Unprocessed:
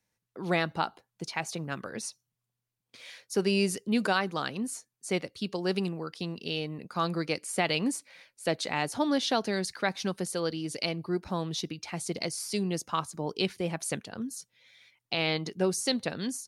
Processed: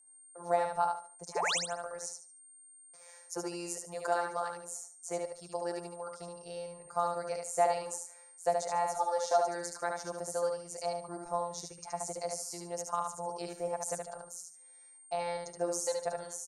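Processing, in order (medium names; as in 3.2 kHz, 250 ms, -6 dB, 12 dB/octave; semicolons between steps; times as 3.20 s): FFT filter 130 Hz 0 dB, 280 Hz -24 dB, 420 Hz +1 dB, 730 Hz +12 dB, 1.8 kHz -3 dB, 3.2 kHz -17 dB, 7.1 kHz +9 dB, 10 kHz -1 dB; robot voice 173 Hz; painted sound rise, 1.35–1.59 s, 360–10000 Hz -27 dBFS; whistle 8.7 kHz -54 dBFS; on a send: feedback delay 73 ms, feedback 27%, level -4 dB; on the sum: trim -5.5 dB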